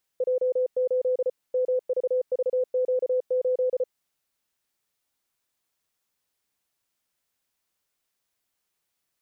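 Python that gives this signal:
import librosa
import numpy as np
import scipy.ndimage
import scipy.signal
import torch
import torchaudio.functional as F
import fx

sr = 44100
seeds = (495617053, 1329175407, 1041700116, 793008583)

y = fx.morse(sr, text='J8 MVVQ8', wpm=34, hz=507.0, level_db=-20.5)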